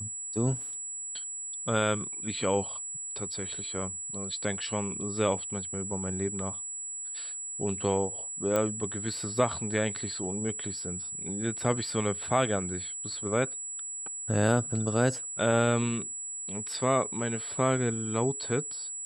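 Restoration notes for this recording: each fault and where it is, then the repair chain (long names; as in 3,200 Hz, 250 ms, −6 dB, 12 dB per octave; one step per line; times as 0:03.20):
whistle 7,800 Hz −35 dBFS
0:08.56: click −14 dBFS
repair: click removal
notch filter 7,800 Hz, Q 30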